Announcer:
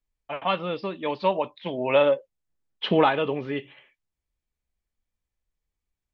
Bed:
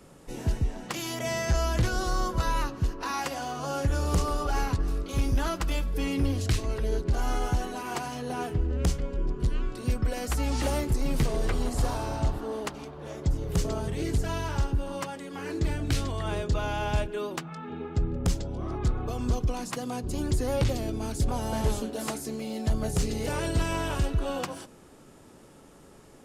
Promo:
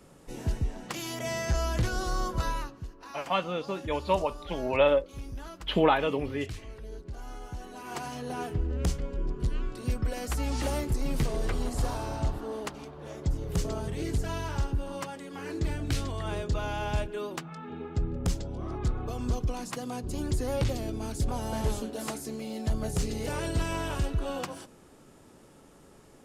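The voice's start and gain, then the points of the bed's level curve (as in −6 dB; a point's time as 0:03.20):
2.85 s, −3.0 dB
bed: 0:02.46 −2.5 dB
0:02.87 −14 dB
0:07.48 −14 dB
0:08.05 −2.5 dB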